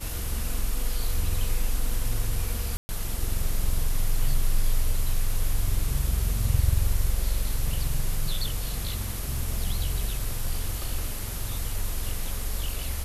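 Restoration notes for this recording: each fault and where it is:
2.77–2.89 s: dropout 120 ms

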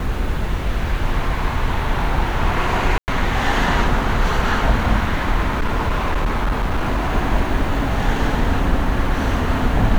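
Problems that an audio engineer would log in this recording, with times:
2.98–3.08 s: dropout 99 ms
5.46–7.11 s: clipped -14.5 dBFS

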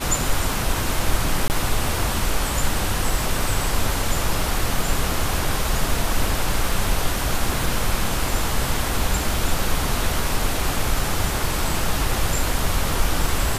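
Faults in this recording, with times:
1.48–1.50 s: dropout 19 ms

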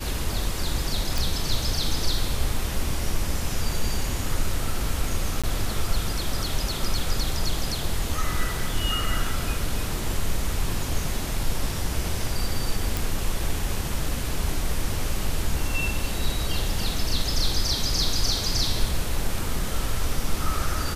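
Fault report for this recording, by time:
1.18 s: pop
5.42–5.44 s: dropout 16 ms
12.97 s: pop

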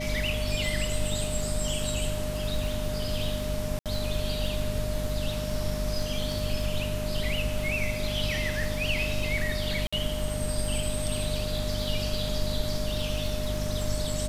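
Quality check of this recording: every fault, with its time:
crackle 25 per s -33 dBFS
hum 50 Hz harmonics 5 -33 dBFS
whine 610 Hz -34 dBFS
3.79–3.86 s: dropout 67 ms
9.87–9.93 s: dropout 55 ms

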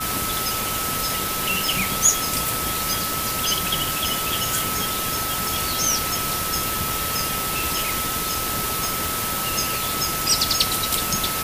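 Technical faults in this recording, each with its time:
whine 1.3 kHz -29 dBFS
1.68 s: pop
5.47 s: pop
8.85 s: pop

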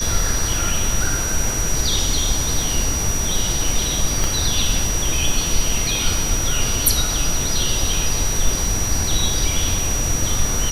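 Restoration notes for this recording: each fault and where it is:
whine 5.8 kHz -23 dBFS
4.24 s: pop

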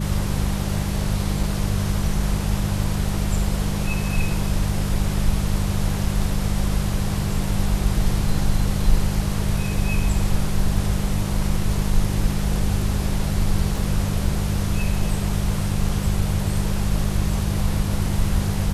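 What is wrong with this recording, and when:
hum 50 Hz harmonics 4 -25 dBFS
1.43 s: dropout 3.6 ms
13.78 s: dropout 2.6 ms

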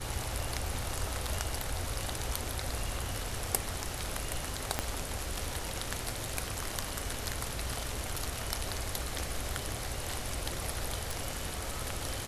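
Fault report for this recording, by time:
4.79 s: pop -13 dBFS
11.11 s: pop

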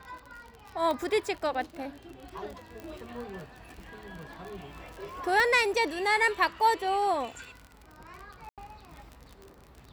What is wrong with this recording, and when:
crackle 42 per s -37 dBFS
0.91 s: pop -20 dBFS
2.80 s: pop
5.40 s: pop -15 dBFS
8.49–8.58 s: dropout 87 ms

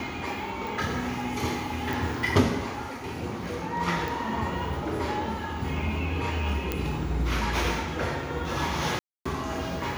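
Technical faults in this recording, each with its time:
0.67 s: pop
1.93 s: pop
4.08 s: pop
6.72 s: pop -13 dBFS
8.99–9.26 s: dropout 265 ms

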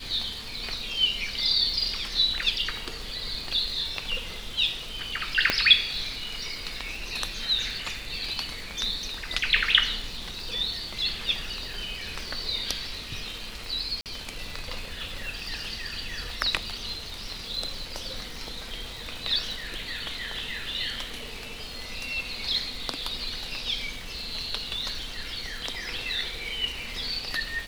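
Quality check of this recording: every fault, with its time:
crackle 530 per s -38 dBFS
5.50 s: pop -6 dBFS
14.01–14.06 s: dropout 48 ms

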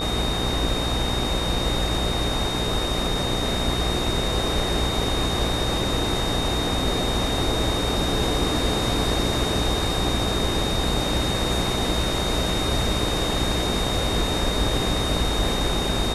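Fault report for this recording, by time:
buzz 60 Hz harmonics 22 -29 dBFS
whine 3.7 kHz -28 dBFS

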